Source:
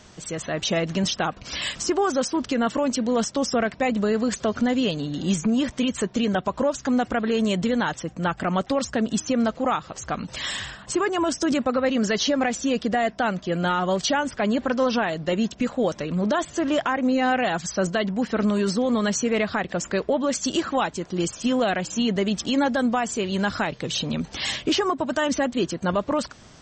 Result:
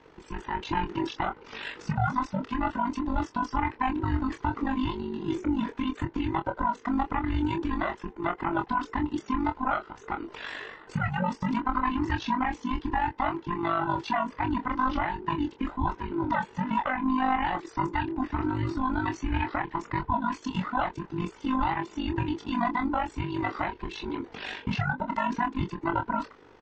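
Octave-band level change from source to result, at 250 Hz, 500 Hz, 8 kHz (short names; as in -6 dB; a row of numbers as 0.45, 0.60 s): -6.5 dB, -13.0 dB, under -20 dB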